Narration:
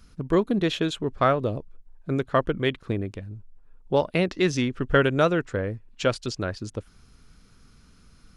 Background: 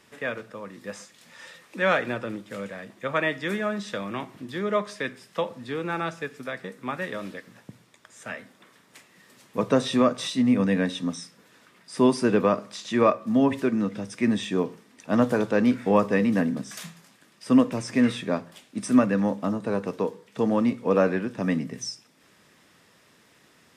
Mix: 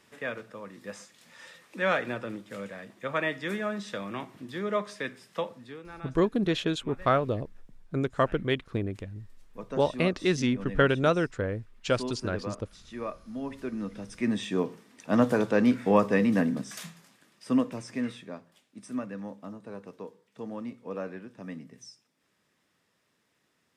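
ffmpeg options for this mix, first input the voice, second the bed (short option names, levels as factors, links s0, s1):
-filter_complex "[0:a]adelay=5850,volume=0.708[s0];[1:a]volume=3.35,afade=t=out:st=5.38:d=0.44:silence=0.251189,afade=t=in:st=13.4:d=1.44:silence=0.188365,afade=t=out:st=16.58:d=1.75:silence=0.211349[s1];[s0][s1]amix=inputs=2:normalize=0"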